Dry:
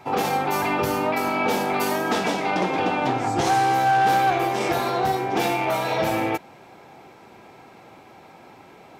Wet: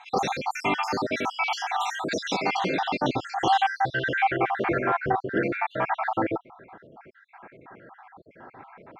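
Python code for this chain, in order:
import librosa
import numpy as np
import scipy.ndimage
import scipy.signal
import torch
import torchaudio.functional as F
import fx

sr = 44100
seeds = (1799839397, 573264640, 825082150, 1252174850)

y = fx.spec_dropout(x, sr, seeds[0], share_pct=62)
y = fx.filter_sweep_lowpass(y, sr, from_hz=5000.0, to_hz=1600.0, start_s=3.03, end_s=4.65, q=2.2)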